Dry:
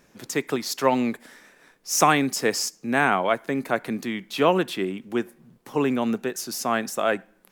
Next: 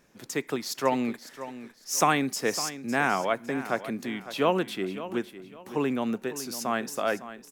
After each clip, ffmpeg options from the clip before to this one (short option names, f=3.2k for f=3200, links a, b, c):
-af "aecho=1:1:556|1112|1668:0.211|0.0613|0.0178,volume=-4.5dB"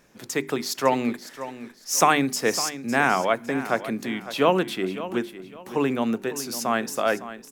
-af "bandreject=f=50:t=h:w=6,bandreject=f=100:t=h:w=6,bandreject=f=150:t=h:w=6,bandreject=f=200:t=h:w=6,bandreject=f=250:t=h:w=6,bandreject=f=300:t=h:w=6,bandreject=f=350:t=h:w=6,bandreject=f=400:t=h:w=6,volume=4.5dB"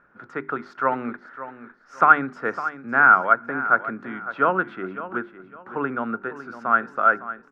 -af "lowpass=f=1.4k:t=q:w=12,volume=-5.5dB"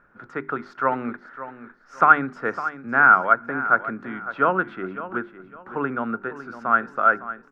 -af "lowshelf=f=67:g=10.5"